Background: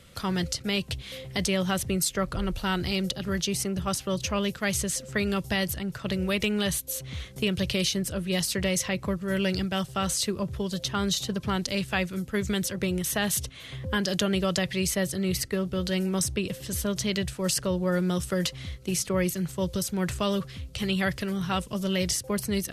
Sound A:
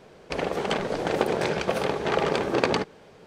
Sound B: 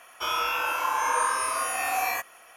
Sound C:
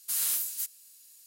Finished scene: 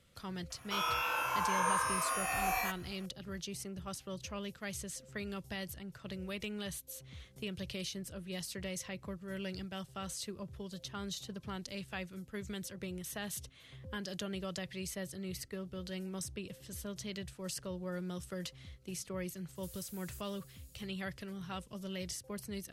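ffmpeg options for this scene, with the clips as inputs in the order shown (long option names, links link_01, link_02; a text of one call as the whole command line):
ffmpeg -i bed.wav -i cue0.wav -i cue1.wav -i cue2.wav -filter_complex "[0:a]volume=-14.5dB[link_01];[3:a]acompressor=threshold=-43dB:ratio=6:attack=3.2:release=140:knee=1:detection=peak[link_02];[2:a]atrim=end=2.56,asetpts=PTS-STARTPTS,volume=-7dB,afade=type=in:duration=0.004:curve=hsin,afade=type=out:start_time=2.556:duration=0.004:curve=hsin,adelay=500[link_03];[link_02]atrim=end=1.26,asetpts=PTS-STARTPTS,volume=-8.5dB,afade=type=in:duration=0.004:curve=hsin,afade=type=out:start_time=1.256:duration=0.004:curve=hsin,adelay=19550[link_04];[link_01][link_03][link_04]amix=inputs=3:normalize=0" out.wav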